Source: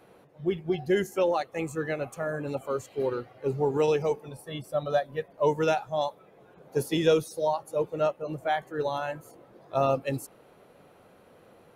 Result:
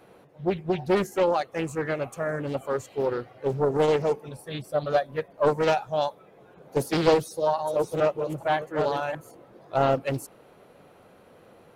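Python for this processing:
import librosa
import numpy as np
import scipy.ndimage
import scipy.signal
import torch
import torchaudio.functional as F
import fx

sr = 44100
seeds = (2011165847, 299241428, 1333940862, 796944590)

y = fx.reverse_delay(x, sr, ms=427, wet_db=-6.0, at=(7.15, 9.15))
y = fx.doppler_dist(y, sr, depth_ms=0.5)
y = y * librosa.db_to_amplitude(2.5)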